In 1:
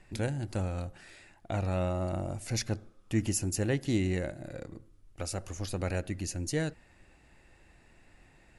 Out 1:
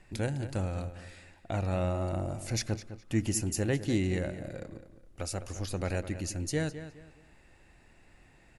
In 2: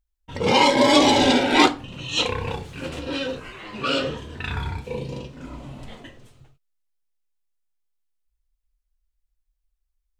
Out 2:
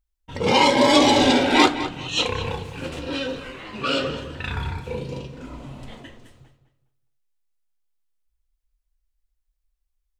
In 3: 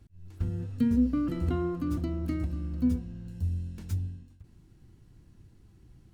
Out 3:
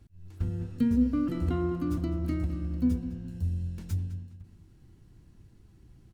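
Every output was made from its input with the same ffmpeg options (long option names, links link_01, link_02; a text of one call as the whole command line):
ffmpeg -i in.wav -filter_complex "[0:a]asplit=2[link_01][link_02];[link_02]adelay=207,lowpass=frequency=4500:poles=1,volume=-12dB,asplit=2[link_03][link_04];[link_04]adelay=207,lowpass=frequency=4500:poles=1,volume=0.31,asplit=2[link_05][link_06];[link_06]adelay=207,lowpass=frequency=4500:poles=1,volume=0.31[link_07];[link_01][link_03][link_05][link_07]amix=inputs=4:normalize=0" out.wav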